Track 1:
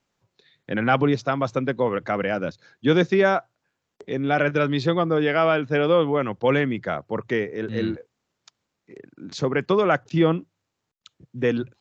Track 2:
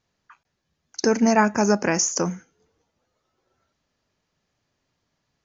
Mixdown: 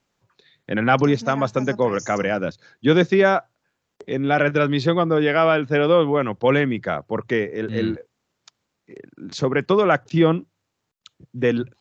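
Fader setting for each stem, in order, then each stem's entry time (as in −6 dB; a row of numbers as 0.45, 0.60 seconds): +2.5, −16.5 decibels; 0.00, 0.00 seconds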